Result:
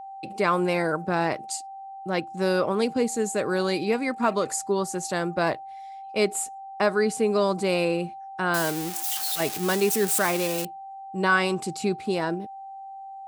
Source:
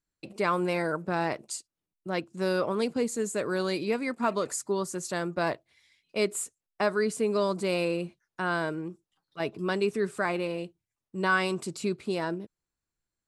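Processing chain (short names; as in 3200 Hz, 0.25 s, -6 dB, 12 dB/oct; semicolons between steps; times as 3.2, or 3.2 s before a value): 8.54–10.65 switching spikes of -22.5 dBFS; whine 780 Hz -41 dBFS; gain +4 dB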